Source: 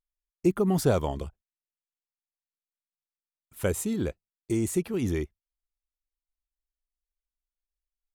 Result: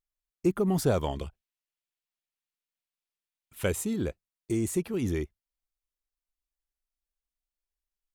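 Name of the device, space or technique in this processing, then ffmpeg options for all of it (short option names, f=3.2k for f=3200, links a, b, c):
parallel distortion: -filter_complex "[0:a]asplit=2[a][b];[b]asoftclip=type=hard:threshold=-23.5dB,volume=-13dB[c];[a][c]amix=inputs=2:normalize=0,asettb=1/sr,asplit=3[d][e][f];[d]atrim=end=1.024[g];[e]atrim=start=1.02:end=3.76,asetpts=PTS-STARTPTS,afade=t=in:d=0.004:c=qsin,afade=t=out:st=2.736:d=0.004:c=qsin,equalizer=f=2.8k:w=1:g=6.5[h];[f]atrim=start=3.756[i];[g][h]acrossfade=d=0.004:c1=hsin:c2=qsin[j];[j][i]acrossfade=d=0.004:c1=qsin:c2=hsin,volume=-3dB"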